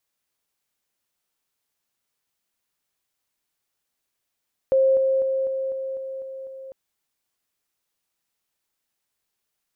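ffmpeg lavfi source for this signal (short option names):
-f lavfi -i "aevalsrc='pow(10,(-14.5-3*floor(t/0.25))/20)*sin(2*PI*532*t)':d=2:s=44100"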